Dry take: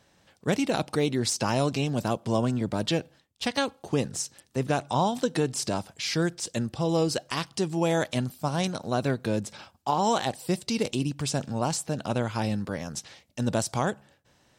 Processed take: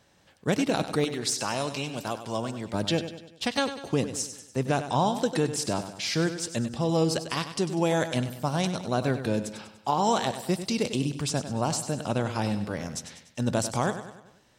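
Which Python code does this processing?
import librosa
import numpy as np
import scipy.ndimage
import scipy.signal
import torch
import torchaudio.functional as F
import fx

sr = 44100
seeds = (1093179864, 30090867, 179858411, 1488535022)

y = fx.low_shelf(x, sr, hz=490.0, db=-10.5, at=(1.04, 2.74))
y = fx.echo_feedback(y, sr, ms=98, feedback_pct=49, wet_db=-11.0)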